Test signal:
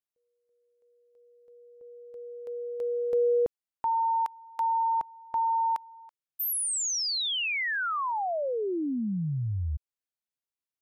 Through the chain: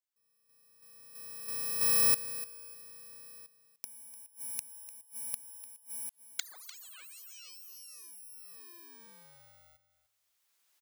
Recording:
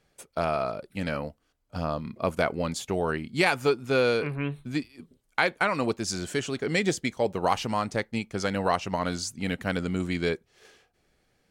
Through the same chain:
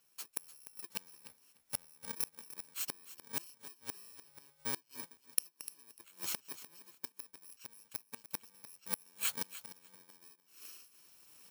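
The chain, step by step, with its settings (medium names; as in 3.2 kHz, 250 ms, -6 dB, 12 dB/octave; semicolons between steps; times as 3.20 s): bit-reversed sample order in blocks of 64 samples; recorder AGC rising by 12 dB/s; inverted gate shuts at -18 dBFS, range -31 dB; high-pass 1 kHz 6 dB/octave; on a send: feedback delay 298 ms, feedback 15%, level -14.5 dB; on the sum: trim -1 dB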